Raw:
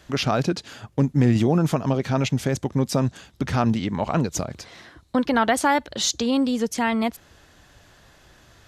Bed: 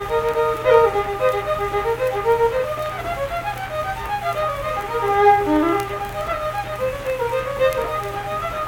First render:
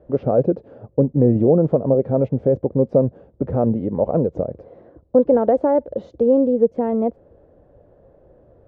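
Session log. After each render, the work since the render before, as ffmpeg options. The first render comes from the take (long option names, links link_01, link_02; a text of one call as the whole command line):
ffmpeg -i in.wav -af "lowpass=frequency=520:width_type=q:width=4.9" out.wav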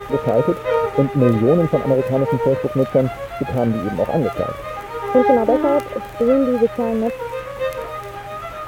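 ffmpeg -i in.wav -i bed.wav -filter_complex "[1:a]volume=-5dB[link_01];[0:a][link_01]amix=inputs=2:normalize=0" out.wav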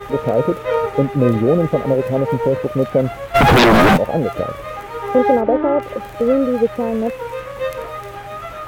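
ffmpeg -i in.wav -filter_complex "[0:a]asplit=3[link_01][link_02][link_03];[link_01]afade=type=out:start_time=3.34:duration=0.02[link_04];[link_02]aeval=exprs='0.473*sin(PI/2*6.31*val(0)/0.473)':channel_layout=same,afade=type=in:start_time=3.34:duration=0.02,afade=type=out:start_time=3.96:duration=0.02[link_05];[link_03]afade=type=in:start_time=3.96:duration=0.02[link_06];[link_04][link_05][link_06]amix=inputs=3:normalize=0,asplit=3[link_07][link_08][link_09];[link_07]afade=type=out:start_time=5.4:duration=0.02[link_10];[link_08]lowpass=2300,afade=type=in:start_time=5.4:duration=0.02,afade=type=out:start_time=5.81:duration=0.02[link_11];[link_09]afade=type=in:start_time=5.81:duration=0.02[link_12];[link_10][link_11][link_12]amix=inputs=3:normalize=0" out.wav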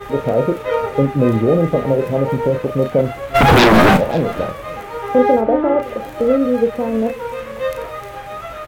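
ffmpeg -i in.wav -filter_complex "[0:a]asplit=2[link_01][link_02];[link_02]adelay=36,volume=-8.5dB[link_03];[link_01][link_03]amix=inputs=2:normalize=0,aecho=1:1:536:0.0891" out.wav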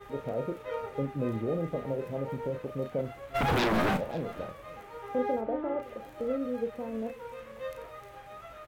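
ffmpeg -i in.wav -af "volume=-17dB" out.wav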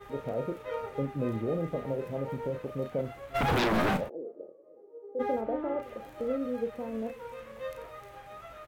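ffmpeg -i in.wav -filter_complex "[0:a]asplit=3[link_01][link_02][link_03];[link_01]afade=type=out:start_time=4.08:duration=0.02[link_04];[link_02]asuperpass=centerf=400:order=4:qfactor=2.2,afade=type=in:start_time=4.08:duration=0.02,afade=type=out:start_time=5.19:duration=0.02[link_05];[link_03]afade=type=in:start_time=5.19:duration=0.02[link_06];[link_04][link_05][link_06]amix=inputs=3:normalize=0" out.wav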